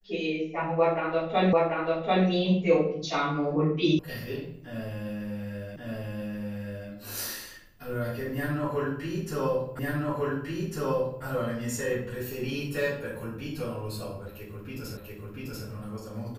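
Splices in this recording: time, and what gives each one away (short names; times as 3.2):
1.53 repeat of the last 0.74 s
3.99 sound cut off
5.76 repeat of the last 1.13 s
9.79 repeat of the last 1.45 s
14.97 repeat of the last 0.69 s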